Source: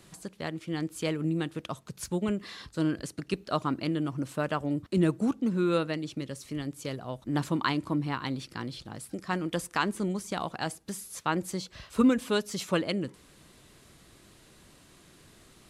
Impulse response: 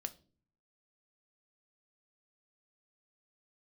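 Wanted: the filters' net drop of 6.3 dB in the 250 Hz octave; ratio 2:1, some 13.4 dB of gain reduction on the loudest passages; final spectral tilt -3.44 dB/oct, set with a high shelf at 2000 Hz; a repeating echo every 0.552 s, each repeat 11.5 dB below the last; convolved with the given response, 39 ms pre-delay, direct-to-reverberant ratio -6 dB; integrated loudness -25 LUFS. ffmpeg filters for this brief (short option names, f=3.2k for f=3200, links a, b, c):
-filter_complex "[0:a]equalizer=f=250:t=o:g=-9,highshelf=f=2k:g=7,acompressor=threshold=-46dB:ratio=2,aecho=1:1:552|1104|1656:0.266|0.0718|0.0194,asplit=2[a][b];[1:a]atrim=start_sample=2205,adelay=39[c];[b][c]afir=irnorm=-1:irlink=0,volume=8dB[d];[a][d]amix=inputs=2:normalize=0,volume=10.5dB"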